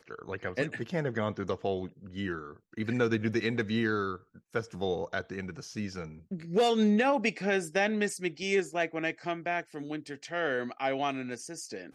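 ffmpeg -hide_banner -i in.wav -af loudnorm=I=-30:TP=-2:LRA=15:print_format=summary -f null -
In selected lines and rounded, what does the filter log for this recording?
Input Integrated:    -32.0 LUFS
Input True Peak:     -14.0 dBTP
Input LRA:             4.9 LU
Input Threshold:     -42.1 LUFS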